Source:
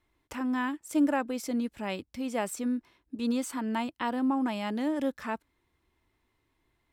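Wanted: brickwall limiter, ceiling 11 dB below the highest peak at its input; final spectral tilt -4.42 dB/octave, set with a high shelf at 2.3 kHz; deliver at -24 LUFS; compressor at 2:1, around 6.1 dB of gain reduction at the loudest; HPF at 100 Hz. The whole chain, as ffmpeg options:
-af "highpass=100,highshelf=f=2300:g=-4.5,acompressor=threshold=0.0251:ratio=2,volume=5.96,alimiter=limit=0.158:level=0:latency=1"

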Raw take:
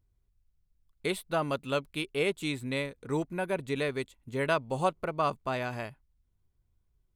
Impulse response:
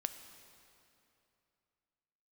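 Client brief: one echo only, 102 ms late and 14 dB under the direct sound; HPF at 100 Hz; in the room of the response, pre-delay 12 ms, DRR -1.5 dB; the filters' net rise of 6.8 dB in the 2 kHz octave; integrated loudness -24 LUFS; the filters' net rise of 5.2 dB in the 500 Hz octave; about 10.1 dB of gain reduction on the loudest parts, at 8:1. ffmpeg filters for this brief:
-filter_complex "[0:a]highpass=100,equalizer=f=500:t=o:g=6,equalizer=f=2000:t=o:g=8.5,acompressor=threshold=0.0355:ratio=8,aecho=1:1:102:0.2,asplit=2[s0][s1];[1:a]atrim=start_sample=2205,adelay=12[s2];[s1][s2]afir=irnorm=-1:irlink=0,volume=1.26[s3];[s0][s3]amix=inputs=2:normalize=0,volume=2.11"

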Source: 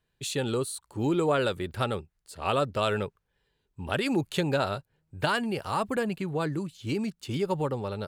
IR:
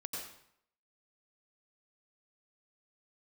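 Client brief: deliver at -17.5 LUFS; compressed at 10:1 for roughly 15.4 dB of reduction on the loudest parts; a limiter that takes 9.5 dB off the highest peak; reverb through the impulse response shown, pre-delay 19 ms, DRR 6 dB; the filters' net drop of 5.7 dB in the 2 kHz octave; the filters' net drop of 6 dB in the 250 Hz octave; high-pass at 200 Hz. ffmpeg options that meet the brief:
-filter_complex "[0:a]highpass=200,equalizer=f=250:t=o:g=-6,equalizer=f=2000:t=o:g=-8.5,acompressor=threshold=0.01:ratio=10,alimiter=level_in=3.55:limit=0.0631:level=0:latency=1,volume=0.282,asplit=2[s0][s1];[1:a]atrim=start_sample=2205,adelay=19[s2];[s1][s2]afir=irnorm=-1:irlink=0,volume=0.501[s3];[s0][s3]amix=inputs=2:normalize=0,volume=25.1"

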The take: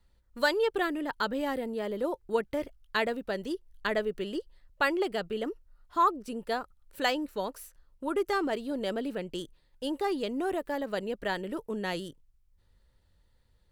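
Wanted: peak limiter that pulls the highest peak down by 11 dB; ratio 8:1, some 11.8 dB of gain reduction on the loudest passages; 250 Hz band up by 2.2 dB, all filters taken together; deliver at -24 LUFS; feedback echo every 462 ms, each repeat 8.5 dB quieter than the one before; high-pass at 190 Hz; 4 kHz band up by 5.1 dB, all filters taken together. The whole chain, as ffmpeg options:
-af "highpass=190,equalizer=f=250:t=o:g=4,equalizer=f=4000:t=o:g=6.5,acompressor=threshold=0.0251:ratio=8,alimiter=level_in=1.5:limit=0.0631:level=0:latency=1,volume=0.668,aecho=1:1:462|924|1386|1848:0.376|0.143|0.0543|0.0206,volume=5.01"

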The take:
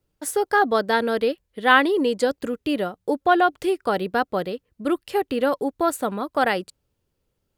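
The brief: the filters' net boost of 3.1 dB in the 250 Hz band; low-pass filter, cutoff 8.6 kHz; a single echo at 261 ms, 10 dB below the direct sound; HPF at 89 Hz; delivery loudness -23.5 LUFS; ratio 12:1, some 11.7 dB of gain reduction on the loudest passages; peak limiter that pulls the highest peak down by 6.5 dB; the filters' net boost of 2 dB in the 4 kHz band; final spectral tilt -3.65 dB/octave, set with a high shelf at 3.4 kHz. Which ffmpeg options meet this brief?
-af "highpass=89,lowpass=8600,equalizer=f=250:t=o:g=4,highshelf=f=3400:g=-7,equalizer=f=4000:t=o:g=7.5,acompressor=threshold=0.0794:ratio=12,alimiter=limit=0.106:level=0:latency=1,aecho=1:1:261:0.316,volume=2"

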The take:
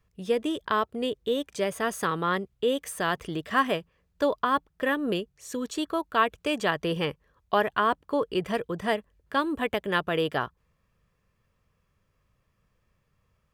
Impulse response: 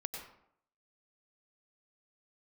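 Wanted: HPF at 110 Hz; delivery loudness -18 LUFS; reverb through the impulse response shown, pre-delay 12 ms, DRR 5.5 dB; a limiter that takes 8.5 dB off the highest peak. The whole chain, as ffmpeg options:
-filter_complex "[0:a]highpass=110,alimiter=limit=0.141:level=0:latency=1,asplit=2[s0][s1];[1:a]atrim=start_sample=2205,adelay=12[s2];[s1][s2]afir=irnorm=-1:irlink=0,volume=0.562[s3];[s0][s3]amix=inputs=2:normalize=0,volume=3.55"

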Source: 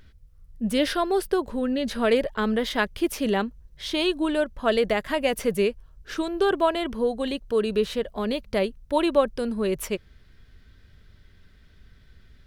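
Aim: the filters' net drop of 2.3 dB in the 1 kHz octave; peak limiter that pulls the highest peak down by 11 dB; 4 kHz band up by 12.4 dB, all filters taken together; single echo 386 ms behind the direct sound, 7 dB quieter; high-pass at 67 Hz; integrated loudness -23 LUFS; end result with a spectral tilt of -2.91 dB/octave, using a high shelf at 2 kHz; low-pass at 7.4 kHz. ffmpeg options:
-af "highpass=67,lowpass=7400,equalizer=f=1000:t=o:g=-5.5,highshelf=f=2000:g=8.5,equalizer=f=4000:t=o:g=8.5,alimiter=limit=0.188:level=0:latency=1,aecho=1:1:386:0.447,volume=1.26"

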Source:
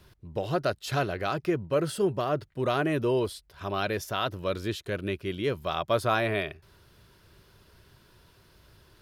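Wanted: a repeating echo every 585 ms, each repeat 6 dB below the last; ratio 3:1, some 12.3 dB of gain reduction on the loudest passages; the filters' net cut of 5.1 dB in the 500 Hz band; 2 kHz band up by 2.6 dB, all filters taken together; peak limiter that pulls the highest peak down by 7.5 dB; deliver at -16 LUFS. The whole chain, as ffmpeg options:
-af "equalizer=f=500:t=o:g=-7,equalizer=f=2000:t=o:g=4,acompressor=threshold=0.01:ratio=3,alimiter=level_in=2.37:limit=0.0631:level=0:latency=1,volume=0.422,aecho=1:1:585|1170|1755|2340|2925|3510:0.501|0.251|0.125|0.0626|0.0313|0.0157,volume=20"

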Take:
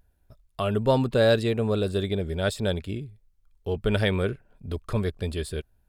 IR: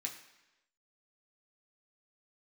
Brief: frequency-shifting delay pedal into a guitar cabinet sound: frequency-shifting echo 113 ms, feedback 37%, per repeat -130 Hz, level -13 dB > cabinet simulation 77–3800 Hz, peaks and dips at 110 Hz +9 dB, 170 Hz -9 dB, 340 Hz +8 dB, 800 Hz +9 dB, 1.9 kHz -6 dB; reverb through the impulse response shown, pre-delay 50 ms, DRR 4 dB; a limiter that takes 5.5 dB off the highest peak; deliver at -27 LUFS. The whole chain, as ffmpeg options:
-filter_complex "[0:a]alimiter=limit=0.168:level=0:latency=1,asplit=2[s0][s1];[1:a]atrim=start_sample=2205,adelay=50[s2];[s1][s2]afir=irnorm=-1:irlink=0,volume=0.708[s3];[s0][s3]amix=inputs=2:normalize=0,asplit=5[s4][s5][s6][s7][s8];[s5]adelay=113,afreqshift=-130,volume=0.224[s9];[s6]adelay=226,afreqshift=-260,volume=0.0832[s10];[s7]adelay=339,afreqshift=-390,volume=0.0305[s11];[s8]adelay=452,afreqshift=-520,volume=0.0114[s12];[s4][s9][s10][s11][s12]amix=inputs=5:normalize=0,highpass=77,equalizer=f=110:t=q:w=4:g=9,equalizer=f=170:t=q:w=4:g=-9,equalizer=f=340:t=q:w=4:g=8,equalizer=f=800:t=q:w=4:g=9,equalizer=f=1900:t=q:w=4:g=-6,lowpass=f=3800:w=0.5412,lowpass=f=3800:w=1.3066,volume=0.75"

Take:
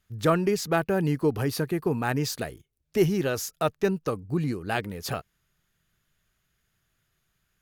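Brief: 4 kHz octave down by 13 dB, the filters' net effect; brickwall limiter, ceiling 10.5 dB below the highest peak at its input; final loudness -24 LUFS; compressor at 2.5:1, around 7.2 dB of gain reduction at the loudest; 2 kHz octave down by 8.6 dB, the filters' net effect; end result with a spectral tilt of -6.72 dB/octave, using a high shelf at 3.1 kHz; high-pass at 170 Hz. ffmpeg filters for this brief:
-af "highpass=170,equalizer=f=2000:t=o:g=-8,highshelf=f=3100:g=-8.5,equalizer=f=4000:t=o:g=-8,acompressor=threshold=0.0355:ratio=2.5,volume=5.31,alimiter=limit=0.211:level=0:latency=1"

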